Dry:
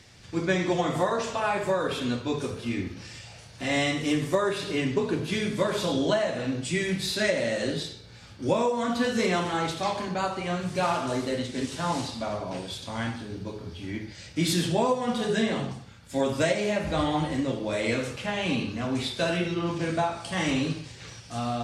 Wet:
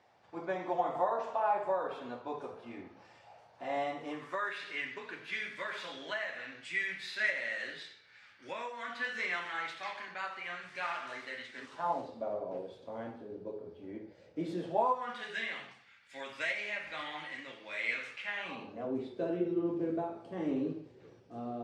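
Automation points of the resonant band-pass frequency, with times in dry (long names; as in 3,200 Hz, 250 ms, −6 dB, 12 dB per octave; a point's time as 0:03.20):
resonant band-pass, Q 2.6
0:04.07 790 Hz
0:04.49 1,900 Hz
0:11.49 1,900 Hz
0:12.09 490 Hz
0:14.58 490 Hz
0:15.27 2,100 Hz
0:18.28 2,100 Hz
0:18.96 380 Hz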